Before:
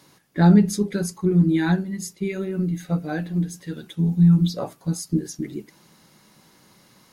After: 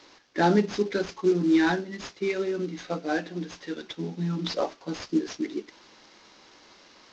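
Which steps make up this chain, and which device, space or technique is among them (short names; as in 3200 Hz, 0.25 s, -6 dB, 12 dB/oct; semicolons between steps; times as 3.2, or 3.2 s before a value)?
early wireless headset (HPF 280 Hz 24 dB/oct; CVSD 32 kbps); gain +2.5 dB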